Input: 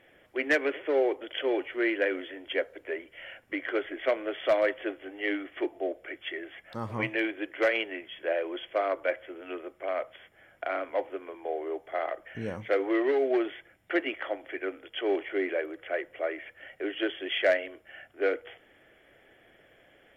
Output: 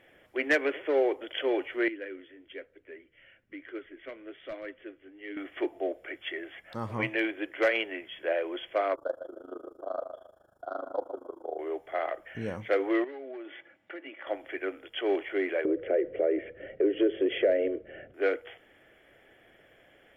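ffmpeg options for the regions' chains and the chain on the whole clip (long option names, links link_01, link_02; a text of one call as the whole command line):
ffmpeg -i in.wav -filter_complex "[0:a]asettb=1/sr,asplit=3[link_01][link_02][link_03];[link_01]atrim=end=1.884[link_04];[link_02]atrim=start=1.88:end=5.37,asetpts=PTS-STARTPTS,afade=type=in:duration=0.004:curve=qsin,afade=type=out:start_time=3.486:duration=0.004:curve=qsin,lowpass=frequency=1400:poles=1,equalizer=frequency=770:width_type=o:width=1.6:gain=-15,flanger=delay=2.3:depth=5.4:regen=77:speed=1.1:shape=triangular[link_05];[link_03]atrim=start=5.366[link_06];[link_04][link_05]acrossfade=duration=0.004:curve1=hsin:curve2=qsin[link_07];[link_07][link_06]acrossfade=duration=0.004:curve1=qsin:curve2=hsin,asettb=1/sr,asplit=3[link_08][link_09][link_10];[link_08]atrim=end=8.954[link_11];[link_09]atrim=start=8.95:end=11.59,asetpts=PTS-STARTPTS,afade=type=in:duration=0.004:curve=qsin,afade=type=out:start_time=2.636:duration=0.004:curve=qsin,asplit=2[link_12][link_13];[link_13]adelay=143,lowpass=frequency=1700:poles=1,volume=-8dB,asplit=2[link_14][link_15];[link_15]adelay=143,lowpass=frequency=1700:poles=1,volume=0.33,asplit=2[link_16][link_17];[link_17]adelay=143,lowpass=frequency=1700:poles=1,volume=0.33,asplit=2[link_18][link_19];[link_19]adelay=143,lowpass=frequency=1700:poles=1,volume=0.33[link_20];[link_12][link_14][link_16][link_18][link_20]amix=inputs=5:normalize=0,atrim=end_sample=116424,tremolo=f=26:d=0.919,asuperstop=centerf=2300:order=8:qfactor=1[link_21];[link_10]atrim=start=11.586[link_22];[link_11][link_21]acrossfade=duration=0.004:curve1=hsin:curve2=qsin[link_23];[link_23][link_22]acrossfade=duration=0.004:curve1=qsin:curve2=hsin,asettb=1/sr,asplit=3[link_24][link_25][link_26];[link_24]atrim=end=13.044[link_27];[link_25]atrim=start=13.04:end=14.27,asetpts=PTS-STARTPTS,afade=type=in:duration=0.004:curve=qsin,afade=type=out:start_time=1.226:duration=0.004:curve=qsin,aecho=1:1:3.5:0.41,atrim=end_sample=54243,acompressor=threshold=-41dB:ratio=4:attack=3.2:release=140:knee=1:detection=peak,highpass=170,lowpass=3600[link_28];[link_26]atrim=start=14.266[link_29];[link_27][link_28]acrossfade=duration=0.004:curve1=hsin:curve2=qsin[link_30];[link_30][link_29]acrossfade=duration=0.004:curve1=qsin:curve2=hsin,asettb=1/sr,asplit=3[link_31][link_32][link_33];[link_31]atrim=end=15.654[link_34];[link_32]atrim=start=15.65:end=18.14,asetpts=PTS-STARTPTS,afade=type=in:duration=0.004:curve=qsin,afade=type=out:start_time=2.486:duration=0.004:curve=qsin,lowpass=2500,lowshelf=frequency=660:width_type=q:width=3:gain=11,acompressor=threshold=-23dB:ratio=3:attack=3.2:release=140:knee=1:detection=peak[link_35];[link_33]atrim=start=18.136[link_36];[link_34][link_35]acrossfade=duration=0.004:curve1=hsin:curve2=qsin[link_37];[link_37][link_36]acrossfade=duration=0.004:curve1=qsin:curve2=hsin" out.wav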